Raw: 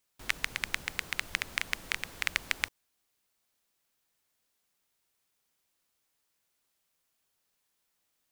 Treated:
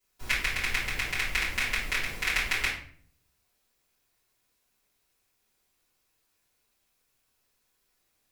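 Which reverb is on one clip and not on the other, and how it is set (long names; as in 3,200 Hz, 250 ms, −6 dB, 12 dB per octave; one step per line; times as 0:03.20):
rectangular room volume 65 cubic metres, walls mixed, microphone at 3.3 metres
level −8.5 dB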